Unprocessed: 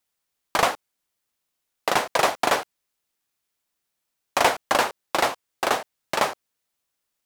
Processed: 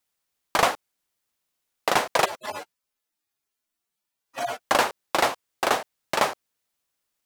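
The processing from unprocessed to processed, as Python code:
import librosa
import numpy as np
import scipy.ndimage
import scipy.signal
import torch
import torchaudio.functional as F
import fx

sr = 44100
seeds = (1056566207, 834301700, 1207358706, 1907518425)

y = fx.hpss_only(x, sr, part='harmonic', at=(2.24, 4.59), fade=0.02)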